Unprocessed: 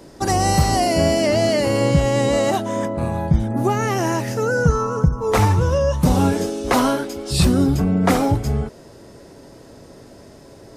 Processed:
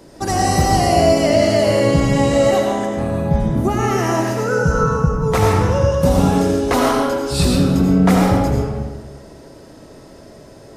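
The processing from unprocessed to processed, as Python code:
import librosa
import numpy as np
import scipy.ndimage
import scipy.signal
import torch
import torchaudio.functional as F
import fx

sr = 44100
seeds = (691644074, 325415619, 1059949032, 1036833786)

y = fx.rev_freeverb(x, sr, rt60_s=1.3, hf_ratio=0.65, predelay_ms=50, drr_db=-1.0)
y = y * 10.0 ** (-1.0 / 20.0)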